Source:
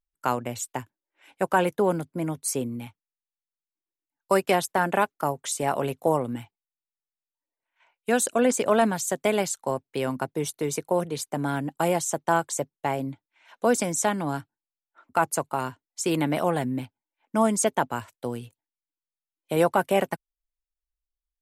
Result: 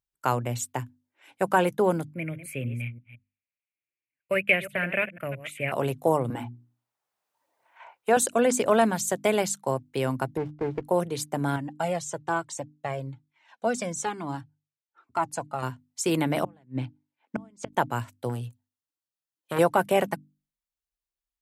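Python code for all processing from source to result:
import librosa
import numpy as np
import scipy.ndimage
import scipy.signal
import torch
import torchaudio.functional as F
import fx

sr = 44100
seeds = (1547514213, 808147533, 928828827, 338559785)

y = fx.chain(x, sr, fx.reverse_delay(ms=169, wet_db=-13.0),
    fx.curve_eq(hz=(110.0, 410.0, 590.0, 850.0, 2400.0, 3900.0, 5600.0, 11000.0), db=(0, -10, -1, -24, 13, -15, -27, -10)), at=(2.14, 5.72))
y = fx.chain(y, sr, fx.peak_eq(hz=820.0, db=13.0, octaves=1.9),
    fx.hum_notches(base_hz=60, count=7),
    fx.band_squash(depth_pct=40), at=(6.3, 8.17))
y = fx.chain(y, sr, fx.lowpass(hz=2000.0, slope=24),
    fx.running_max(window=17), at=(10.37, 10.84))
y = fx.chain(y, sr, fx.lowpass(hz=7500.0, slope=12),
    fx.comb_cascade(direction='falling', hz=1.1), at=(11.56, 15.63))
y = fx.chain(y, sr, fx.lowpass(hz=4900.0, slope=12),
    fx.gate_flip(shuts_db=-17.0, range_db=-33), at=(16.44, 17.73))
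y = fx.chain(y, sr, fx.notch(hz=2200.0, q=6.3),
    fx.transformer_sat(knee_hz=1100.0), at=(18.29, 19.59))
y = scipy.signal.sosfilt(scipy.signal.butter(2, 41.0, 'highpass', fs=sr, output='sos'), y)
y = fx.peak_eq(y, sr, hz=120.0, db=8.5, octaves=0.33)
y = fx.hum_notches(y, sr, base_hz=50, count=6)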